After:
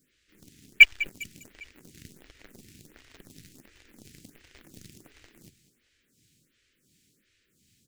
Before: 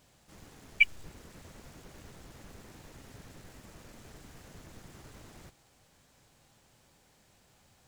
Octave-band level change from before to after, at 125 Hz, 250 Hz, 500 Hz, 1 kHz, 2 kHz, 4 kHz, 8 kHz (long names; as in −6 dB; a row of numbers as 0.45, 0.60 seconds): −3.0, 0.0, −2.5, −5.0, +10.0, +13.5, +7.5 decibels